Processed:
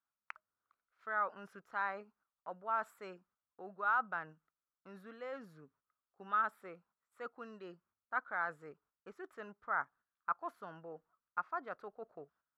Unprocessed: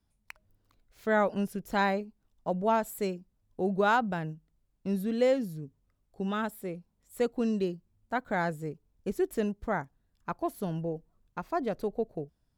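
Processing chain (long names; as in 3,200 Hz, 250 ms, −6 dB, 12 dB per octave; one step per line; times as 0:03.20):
noise gate −57 dBFS, range −10 dB
reversed playback
downward compressor 5 to 1, threshold −34 dBFS, peak gain reduction 12.5 dB
reversed playback
resonant band-pass 1,300 Hz, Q 5.1
level +11.5 dB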